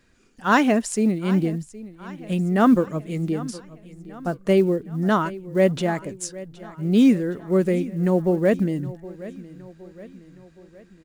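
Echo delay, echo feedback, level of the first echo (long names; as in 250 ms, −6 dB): 767 ms, 52%, −18.0 dB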